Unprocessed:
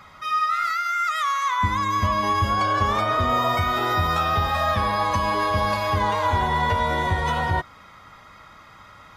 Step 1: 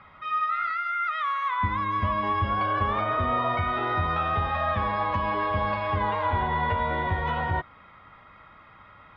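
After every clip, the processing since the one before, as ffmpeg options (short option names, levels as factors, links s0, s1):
-af "lowpass=f=3100:w=0.5412,lowpass=f=3100:w=1.3066,volume=0.631"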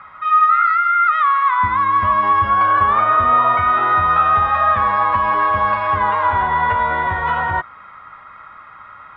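-af "equalizer=f=1300:t=o:w=1.5:g=14"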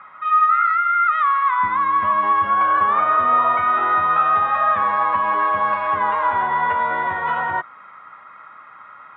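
-af "highpass=190,lowpass=3500,volume=0.75"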